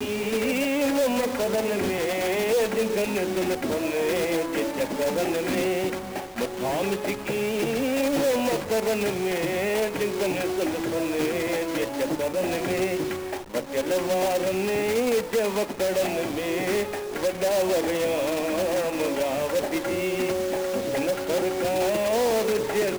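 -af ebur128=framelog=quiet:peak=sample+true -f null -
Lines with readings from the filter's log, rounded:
Integrated loudness:
  I:         -25.4 LUFS
  Threshold: -35.4 LUFS
Loudness range:
  LRA:         1.7 LU
  Threshold: -45.6 LUFS
  LRA low:   -26.5 LUFS
  LRA high:  -24.9 LUFS
Sample peak:
  Peak:      -14.0 dBFS
True peak:
  Peak:      -13.5 dBFS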